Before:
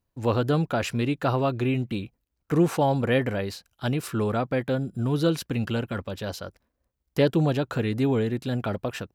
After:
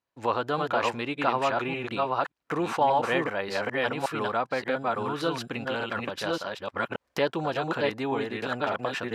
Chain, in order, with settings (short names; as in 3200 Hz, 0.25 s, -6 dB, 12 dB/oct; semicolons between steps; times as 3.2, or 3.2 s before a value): reverse delay 0.58 s, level -2 dB; recorder AGC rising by 18 dB/s; dynamic EQ 950 Hz, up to +6 dB, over -39 dBFS, Q 1.7; band-pass 1700 Hz, Q 0.5